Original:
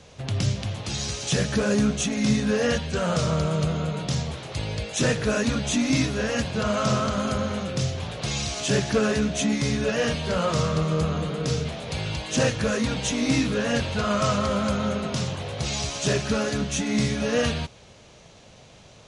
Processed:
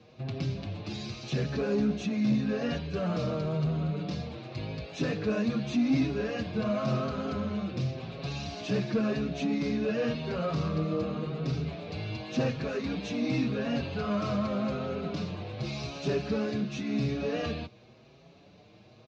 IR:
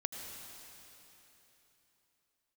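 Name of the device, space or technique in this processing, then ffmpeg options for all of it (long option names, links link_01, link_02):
barber-pole flanger into a guitar amplifier: -filter_complex "[0:a]asplit=2[link_01][link_02];[link_02]adelay=6.1,afreqshift=0.9[link_03];[link_01][link_03]amix=inputs=2:normalize=1,asoftclip=type=tanh:threshold=-19dB,highpass=110,equalizer=frequency=320:width_type=q:width=4:gain=4,equalizer=frequency=530:width_type=q:width=4:gain=-4,equalizer=frequency=910:width_type=q:width=4:gain=-7,equalizer=frequency=1400:width_type=q:width=4:gain=-6,equalizer=frequency=1900:width_type=q:width=4:gain=-8,equalizer=frequency=3200:width_type=q:width=4:gain=-10,lowpass=frequency=4000:width=0.5412,lowpass=frequency=4000:width=1.3066"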